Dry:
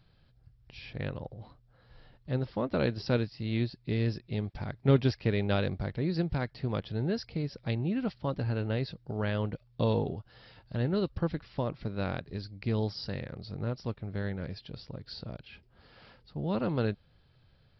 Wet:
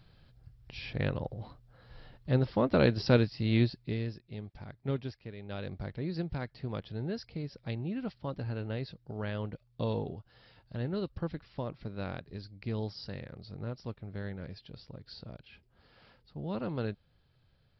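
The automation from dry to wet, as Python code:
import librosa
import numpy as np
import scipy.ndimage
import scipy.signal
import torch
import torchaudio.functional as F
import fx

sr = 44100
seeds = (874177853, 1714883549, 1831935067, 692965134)

y = fx.gain(x, sr, db=fx.line((3.67, 4.0), (4.14, -9.0), (4.87, -9.0), (5.35, -17.0), (5.79, -5.0)))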